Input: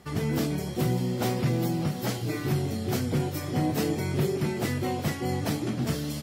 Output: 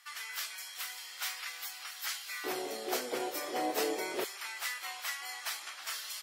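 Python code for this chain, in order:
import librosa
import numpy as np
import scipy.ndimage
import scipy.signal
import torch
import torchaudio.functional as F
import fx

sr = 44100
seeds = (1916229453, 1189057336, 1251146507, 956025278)

y = fx.highpass(x, sr, hz=fx.steps((0.0, 1300.0), (2.44, 420.0), (4.24, 1100.0)), slope=24)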